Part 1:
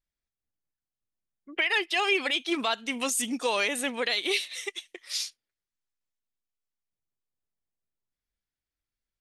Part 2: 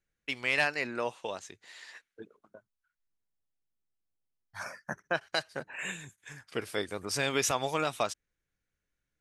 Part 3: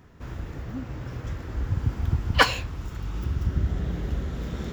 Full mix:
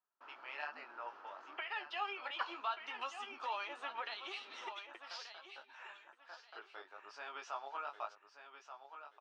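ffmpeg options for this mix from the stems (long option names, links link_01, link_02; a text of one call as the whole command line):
ffmpeg -i stem1.wav -i stem2.wav -i stem3.wav -filter_complex "[0:a]flanger=delay=7.7:depth=7.8:regen=38:speed=0.22:shape=triangular,volume=-1dB,asplit=3[link_01][link_02][link_03];[link_02]volume=-18dB[link_04];[1:a]flanger=delay=17.5:depth=4.3:speed=1.1,volume=-12dB,asplit=2[link_05][link_06];[link_06]volume=-9.5dB[link_07];[2:a]volume=-12dB[link_08];[link_03]apad=whole_len=405824[link_09];[link_05][link_09]sidechaincompress=threshold=-48dB:ratio=8:attack=25:release=406[link_10];[link_01][link_08]amix=inputs=2:normalize=0,agate=range=-25dB:threshold=-56dB:ratio=16:detection=peak,acompressor=threshold=-38dB:ratio=4,volume=0dB[link_11];[link_04][link_07]amix=inputs=2:normalize=0,aecho=0:1:1181|2362|3543|4724:1|0.28|0.0784|0.022[link_12];[link_10][link_11][link_12]amix=inputs=3:normalize=0,highpass=frequency=470:width=0.5412,highpass=frequency=470:width=1.3066,equalizer=frequency=490:width_type=q:width=4:gain=-10,equalizer=frequency=900:width_type=q:width=4:gain=7,equalizer=frequency=1300:width_type=q:width=4:gain=8,equalizer=frequency=2100:width_type=q:width=4:gain=-8,equalizer=frequency=3700:width_type=q:width=4:gain=-8,lowpass=frequency=4200:width=0.5412,lowpass=frequency=4200:width=1.3066" out.wav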